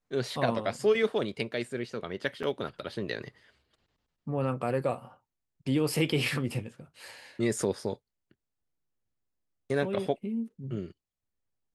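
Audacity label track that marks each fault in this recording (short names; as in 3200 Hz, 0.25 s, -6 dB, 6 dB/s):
2.430000	2.430000	gap 4.9 ms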